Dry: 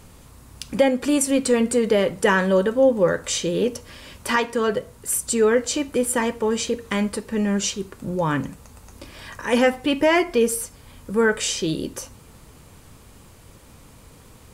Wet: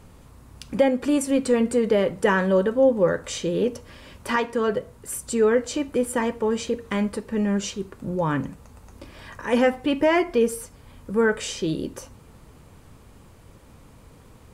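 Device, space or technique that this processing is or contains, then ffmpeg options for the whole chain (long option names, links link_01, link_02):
behind a face mask: -af "highshelf=frequency=2600:gain=-8,volume=-1dB"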